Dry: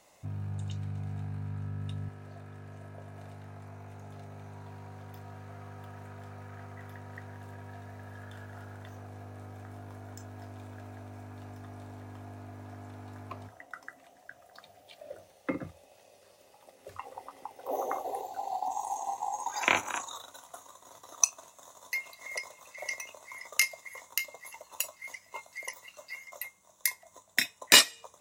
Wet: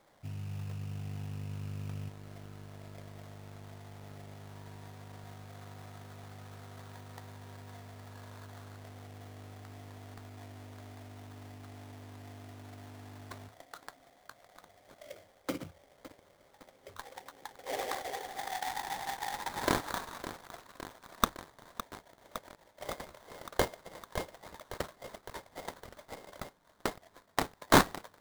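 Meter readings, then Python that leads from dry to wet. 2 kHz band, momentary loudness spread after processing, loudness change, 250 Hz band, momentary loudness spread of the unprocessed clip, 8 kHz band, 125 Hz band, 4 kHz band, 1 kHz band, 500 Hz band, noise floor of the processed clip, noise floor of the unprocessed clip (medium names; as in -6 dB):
-7.0 dB, 17 LU, -8.5 dB, +4.0 dB, 19 LU, -12.0 dB, -2.0 dB, -10.5 dB, 0.0 dB, +2.5 dB, -65 dBFS, -61 dBFS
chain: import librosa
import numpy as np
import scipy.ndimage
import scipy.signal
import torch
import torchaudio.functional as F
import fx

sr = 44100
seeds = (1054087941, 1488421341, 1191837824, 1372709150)

y = fx.spec_box(x, sr, start_s=21.82, length_s=0.99, low_hz=1000.0, high_hz=8600.0, gain_db=-21)
y = fx.sample_hold(y, sr, seeds[0], rate_hz=2700.0, jitter_pct=20)
y = fx.echo_crushed(y, sr, ms=560, feedback_pct=80, bits=6, wet_db=-12)
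y = y * librosa.db_to_amplitude(-3.5)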